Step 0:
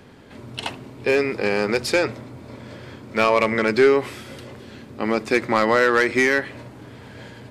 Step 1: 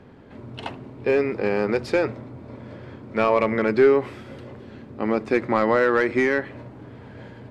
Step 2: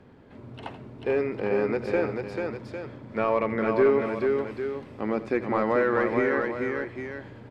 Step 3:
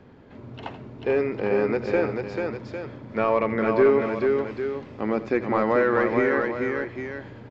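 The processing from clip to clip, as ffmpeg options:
-af "lowpass=f=1200:p=1"
-filter_complex "[0:a]aecho=1:1:84|440|802:0.158|0.596|0.299,acrossover=split=2500[s0][s1];[s1]acompressor=threshold=0.00631:ratio=4:attack=1:release=60[s2];[s0][s2]amix=inputs=2:normalize=0,volume=0.562"
-af "aresample=16000,aresample=44100,volume=1.33"

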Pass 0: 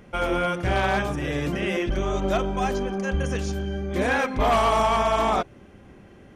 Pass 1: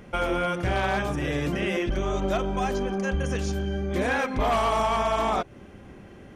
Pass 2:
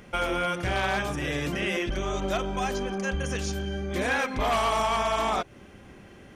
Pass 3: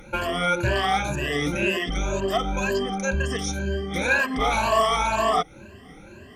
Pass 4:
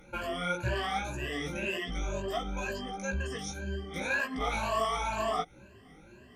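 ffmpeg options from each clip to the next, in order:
-af "acompressor=threshold=0.0398:ratio=2,volume=1.33"
-af "tiltshelf=f=1400:g=-3.5"
-af "afftfilt=real='re*pow(10,20/40*sin(2*PI*(1.4*log(max(b,1)*sr/1024/100)/log(2)-(2)*(pts-256)/sr)))':imag='im*pow(10,20/40*sin(2*PI*(1.4*log(max(b,1)*sr/1024/100)/log(2)-(2)*(pts-256)/sr)))':win_size=1024:overlap=0.75"
-af "flanger=delay=16:depth=3.3:speed=1.6,volume=0.473"

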